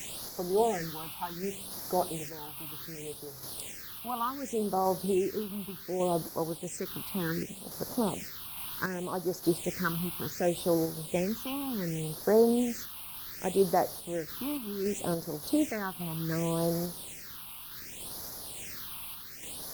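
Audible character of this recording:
a quantiser's noise floor 6 bits, dither triangular
phaser sweep stages 6, 0.67 Hz, lowest notch 480–2,700 Hz
sample-and-hold tremolo
Opus

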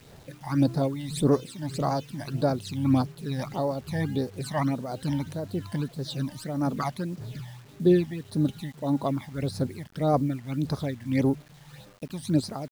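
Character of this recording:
tremolo triangle 1.8 Hz, depth 75%
phaser sweep stages 12, 1.7 Hz, lowest notch 410–3,000 Hz
a quantiser's noise floor 10 bits, dither none

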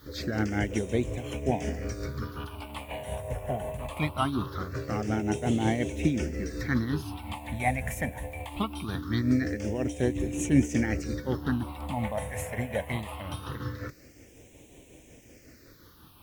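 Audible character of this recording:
tremolo triangle 5.5 Hz, depth 60%
a quantiser's noise floor 10 bits, dither triangular
phaser sweep stages 6, 0.22 Hz, lowest notch 330–1,300 Hz
Ogg Vorbis

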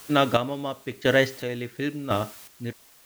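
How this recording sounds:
a quantiser's noise floor 8 bits, dither triangular
chopped level 0.95 Hz, depth 65%, duty 35%

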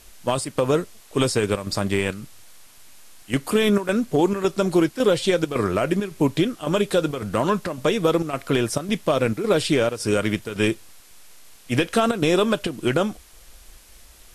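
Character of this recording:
chopped level 1.8 Hz, depth 65%, duty 80%
a quantiser's noise floor 8 bits, dither triangular
Ogg Vorbis

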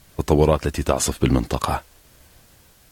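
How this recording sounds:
tremolo triangle 1 Hz, depth 40%
a quantiser's noise floor 10 bits, dither triangular
AAC

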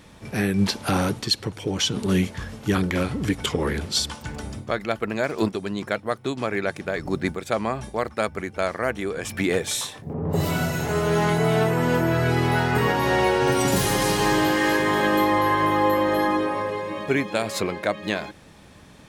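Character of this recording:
background noise floor −47 dBFS
spectral slope −5.0 dB per octave

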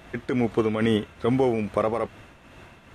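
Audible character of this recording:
tremolo triangle 2.4 Hz, depth 55%

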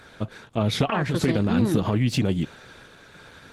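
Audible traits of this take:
sample-and-hold tremolo 3.5 Hz, depth 55%
Opus

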